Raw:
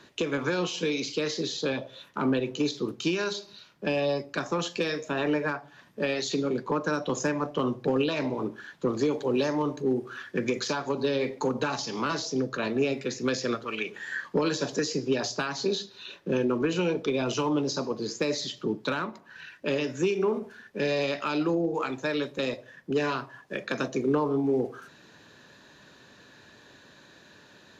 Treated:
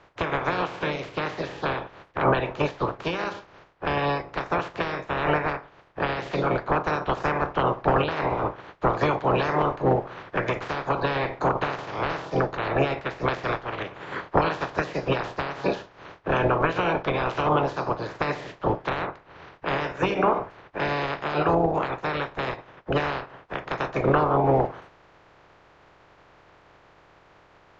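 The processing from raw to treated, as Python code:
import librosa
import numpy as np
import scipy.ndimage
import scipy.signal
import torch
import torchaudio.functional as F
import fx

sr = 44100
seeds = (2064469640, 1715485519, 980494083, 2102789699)

y = fx.spec_clip(x, sr, under_db=28)
y = scipy.signal.sosfilt(scipy.signal.butter(2, 1300.0, 'lowpass', fs=sr, output='sos'), y)
y = fx.peak_eq(y, sr, hz=230.0, db=-12.0, octaves=0.32)
y = F.gain(torch.from_numpy(y), 7.0).numpy()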